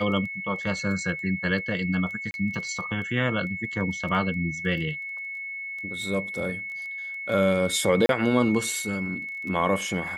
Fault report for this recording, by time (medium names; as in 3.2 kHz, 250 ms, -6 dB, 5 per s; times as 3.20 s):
crackle 10 per s
whine 2.2 kHz -32 dBFS
2.31–2.34 s: dropout 31 ms
8.06–8.09 s: dropout 32 ms